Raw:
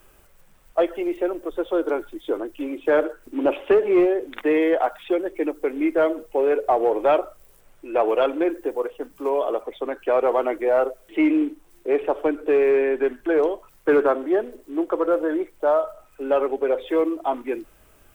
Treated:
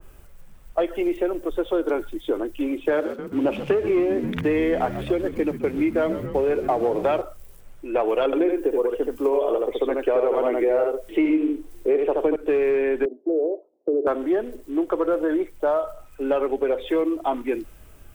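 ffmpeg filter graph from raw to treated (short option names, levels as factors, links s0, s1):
-filter_complex "[0:a]asettb=1/sr,asplit=3[s0][s1][s2];[s0]atrim=end=2.924[s3];[s1]atrim=start=2.92:end=7.22,asetpts=PTS-STARTPTS,afade=t=in:d=0.004:c=qsin,afade=t=out:st=4.296:d=0.004:c=qsin,highpass=74,aeval=exprs='sgn(val(0))*max(abs(val(0))-0.00355,0)':c=same,asplit=8[s4][s5][s6][s7][s8][s9][s10][s11];[s5]adelay=132,afreqshift=-63,volume=0.178[s12];[s6]adelay=264,afreqshift=-126,volume=0.116[s13];[s7]adelay=396,afreqshift=-189,volume=0.075[s14];[s8]adelay=528,afreqshift=-252,volume=0.049[s15];[s9]adelay=660,afreqshift=-315,volume=0.0316[s16];[s10]adelay=792,afreqshift=-378,volume=0.0207[s17];[s11]adelay=924,afreqshift=-441,volume=0.0133[s18];[s4][s12][s13][s14][s15][s16][s17][s18]amix=inputs=8:normalize=0,atrim=end_sample=189630[s19];[s2]atrim=start=7.216[s20];[s3][s19]acrossfade=d=0.004:c1=hsin:c2=qsin[s21];[s21][s20]acrossfade=d=0.004:c1=qsin:c2=hsin,asettb=1/sr,asplit=3[s22][s23][s24];[s22]atrim=end=8.254[s25];[s23]atrim=start=8.25:end=12.36,asetpts=PTS-STARTPTS,afade=t=in:d=0.004:c=qsin,afade=t=out:st=4.106:d=0.004:c=qsin,equalizer=f=430:w=1.7:g=6.5,aecho=1:1:76:0.668,atrim=end_sample=181251[s26];[s24]atrim=start=12.356[s27];[s25][s26]acrossfade=d=0.004:c1=hsin:c2=qsin[s28];[s28][s27]acrossfade=d=0.004:c1=qsin:c2=hsin,asettb=1/sr,asplit=3[s29][s30][s31];[s29]atrim=end=13.054[s32];[s30]atrim=start=13.05:end=14.07,asetpts=PTS-STARTPTS,afade=t=in:d=0.004:c=qsin,afade=t=out:st=1.016:d=0.004:c=qsin,asuperpass=centerf=440:order=8:qfactor=1.1,acompressor=threshold=0.0794:ratio=2:attack=3.2:release=140:knee=1:detection=peak[s33];[s31]atrim=start=14.066[s34];[s32][s33]acrossfade=d=0.004:c1=hsin:c2=qsin[s35];[s35][s34]acrossfade=d=0.004:c1=qsin:c2=hsin,lowshelf=f=220:g=11,acompressor=threshold=0.126:ratio=5,adynamicequalizer=threshold=0.0126:dfrequency=1800:dqfactor=0.7:tfrequency=1800:tqfactor=0.7:attack=5:release=100:ratio=0.375:range=2:mode=boostabove:tftype=highshelf"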